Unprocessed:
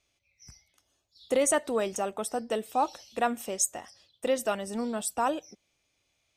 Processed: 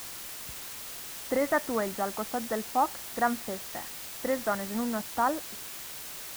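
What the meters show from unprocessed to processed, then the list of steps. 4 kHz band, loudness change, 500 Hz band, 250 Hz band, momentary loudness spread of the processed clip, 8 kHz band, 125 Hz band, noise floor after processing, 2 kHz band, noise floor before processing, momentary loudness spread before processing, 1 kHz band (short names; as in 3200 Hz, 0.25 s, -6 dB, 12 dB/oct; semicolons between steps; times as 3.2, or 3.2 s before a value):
+1.5 dB, -2.0 dB, -2.5 dB, +1.0 dB, 10 LU, -5.5 dB, n/a, -41 dBFS, +3.0 dB, -76 dBFS, 7 LU, +1.0 dB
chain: steep low-pass 2100 Hz 96 dB/oct; bell 460 Hz -7.5 dB 1.3 oct; in parallel at -5 dB: requantised 6-bit, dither triangular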